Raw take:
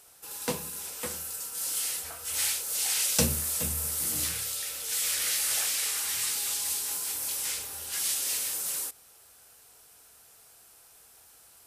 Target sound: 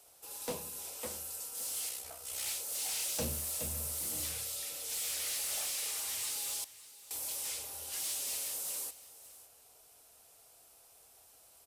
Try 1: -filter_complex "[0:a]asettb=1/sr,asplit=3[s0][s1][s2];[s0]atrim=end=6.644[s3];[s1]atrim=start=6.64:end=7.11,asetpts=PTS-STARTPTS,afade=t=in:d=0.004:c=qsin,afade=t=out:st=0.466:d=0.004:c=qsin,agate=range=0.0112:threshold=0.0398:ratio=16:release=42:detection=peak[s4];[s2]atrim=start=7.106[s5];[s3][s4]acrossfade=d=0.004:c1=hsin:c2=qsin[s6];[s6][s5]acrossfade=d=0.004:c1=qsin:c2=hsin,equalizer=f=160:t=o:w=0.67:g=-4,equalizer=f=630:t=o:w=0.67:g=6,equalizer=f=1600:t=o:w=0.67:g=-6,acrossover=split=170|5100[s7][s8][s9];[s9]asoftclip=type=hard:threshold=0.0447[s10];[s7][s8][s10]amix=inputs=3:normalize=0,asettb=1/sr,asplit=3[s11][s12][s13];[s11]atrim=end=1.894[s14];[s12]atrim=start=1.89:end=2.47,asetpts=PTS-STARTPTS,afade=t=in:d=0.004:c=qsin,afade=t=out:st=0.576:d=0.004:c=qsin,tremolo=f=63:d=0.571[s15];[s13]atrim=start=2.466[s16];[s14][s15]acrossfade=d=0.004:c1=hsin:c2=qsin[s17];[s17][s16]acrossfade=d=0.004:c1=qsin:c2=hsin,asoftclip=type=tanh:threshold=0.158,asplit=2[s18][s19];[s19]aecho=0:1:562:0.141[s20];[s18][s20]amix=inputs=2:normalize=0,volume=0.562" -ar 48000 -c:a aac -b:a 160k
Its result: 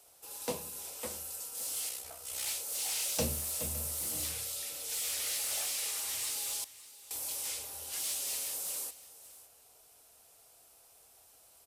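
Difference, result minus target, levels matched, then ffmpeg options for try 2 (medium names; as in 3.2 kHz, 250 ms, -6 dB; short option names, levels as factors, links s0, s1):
saturation: distortion -11 dB
-filter_complex "[0:a]asettb=1/sr,asplit=3[s0][s1][s2];[s0]atrim=end=6.644[s3];[s1]atrim=start=6.64:end=7.11,asetpts=PTS-STARTPTS,afade=t=in:d=0.004:c=qsin,afade=t=out:st=0.466:d=0.004:c=qsin,agate=range=0.0112:threshold=0.0398:ratio=16:release=42:detection=peak[s4];[s2]atrim=start=7.106[s5];[s3][s4]acrossfade=d=0.004:c1=hsin:c2=qsin[s6];[s6][s5]acrossfade=d=0.004:c1=qsin:c2=hsin,equalizer=f=160:t=o:w=0.67:g=-4,equalizer=f=630:t=o:w=0.67:g=6,equalizer=f=1600:t=o:w=0.67:g=-6,acrossover=split=170|5100[s7][s8][s9];[s9]asoftclip=type=hard:threshold=0.0447[s10];[s7][s8][s10]amix=inputs=3:normalize=0,asettb=1/sr,asplit=3[s11][s12][s13];[s11]atrim=end=1.894[s14];[s12]atrim=start=1.89:end=2.47,asetpts=PTS-STARTPTS,afade=t=in:d=0.004:c=qsin,afade=t=out:st=0.576:d=0.004:c=qsin,tremolo=f=63:d=0.571[s15];[s13]atrim=start=2.466[s16];[s14][s15]acrossfade=d=0.004:c1=hsin:c2=qsin[s17];[s17][s16]acrossfade=d=0.004:c1=qsin:c2=hsin,asoftclip=type=tanh:threshold=0.0562,asplit=2[s18][s19];[s19]aecho=0:1:562:0.141[s20];[s18][s20]amix=inputs=2:normalize=0,volume=0.562" -ar 48000 -c:a aac -b:a 160k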